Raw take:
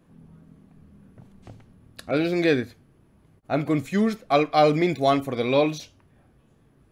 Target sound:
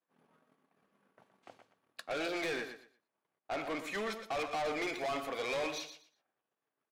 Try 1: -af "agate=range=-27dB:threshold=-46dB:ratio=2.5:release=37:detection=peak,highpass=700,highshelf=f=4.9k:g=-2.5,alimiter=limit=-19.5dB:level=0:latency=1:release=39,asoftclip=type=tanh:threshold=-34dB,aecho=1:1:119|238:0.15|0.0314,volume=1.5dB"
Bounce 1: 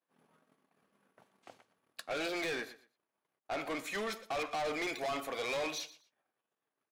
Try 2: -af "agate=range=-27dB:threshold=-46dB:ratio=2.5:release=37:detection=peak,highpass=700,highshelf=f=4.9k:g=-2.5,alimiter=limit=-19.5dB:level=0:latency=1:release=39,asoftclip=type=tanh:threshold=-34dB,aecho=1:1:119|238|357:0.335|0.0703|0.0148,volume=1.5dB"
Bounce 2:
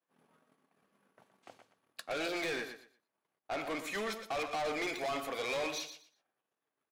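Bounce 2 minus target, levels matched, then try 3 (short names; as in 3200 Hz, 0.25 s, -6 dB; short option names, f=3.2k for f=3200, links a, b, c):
8000 Hz band +2.5 dB
-af "agate=range=-27dB:threshold=-46dB:ratio=2.5:release=37:detection=peak,highpass=700,highshelf=f=4.9k:g=-9.5,alimiter=limit=-19.5dB:level=0:latency=1:release=39,asoftclip=type=tanh:threshold=-34dB,aecho=1:1:119|238|357:0.335|0.0703|0.0148,volume=1.5dB"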